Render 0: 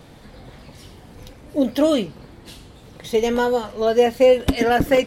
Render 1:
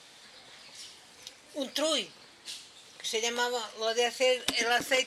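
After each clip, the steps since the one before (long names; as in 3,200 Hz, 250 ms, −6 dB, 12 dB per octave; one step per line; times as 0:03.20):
meter weighting curve ITU-R 468
level −8 dB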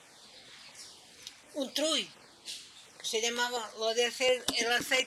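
auto-filter notch saw down 1.4 Hz 340–4,900 Hz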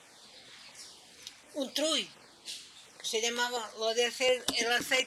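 mains-hum notches 50/100/150 Hz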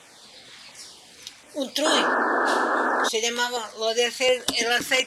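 sound drawn into the spectrogram noise, 0:01.85–0:03.09, 230–1,800 Hz −29 dBFS
level +6.5 dB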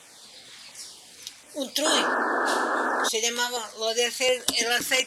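high-shelf EQ 5,500 Hz +8.5 dB
level −3 dB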